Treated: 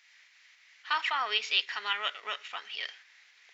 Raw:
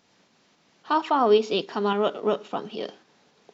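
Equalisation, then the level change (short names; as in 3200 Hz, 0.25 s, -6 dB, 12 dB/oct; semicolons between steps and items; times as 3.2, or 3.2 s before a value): resonant high-pass 2000 Hz, resonance Q 4.4; 0.0 dB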